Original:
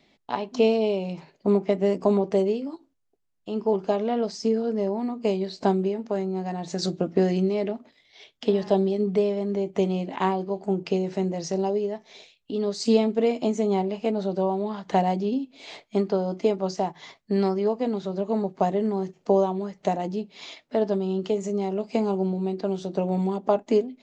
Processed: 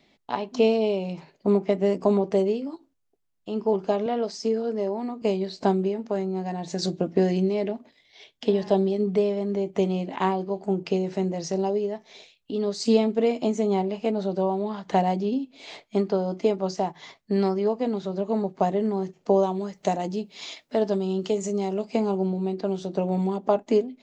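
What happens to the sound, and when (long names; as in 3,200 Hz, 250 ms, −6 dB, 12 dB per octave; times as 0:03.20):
0:04.06–0:05.22: high-pass filter 240 Hz
0:06.44–0:08.70: notch filter 1,300 Hz, Q 8.1
0:19.43–0:21.85: high-shelf EQ 5,300 Hz +10.5 dB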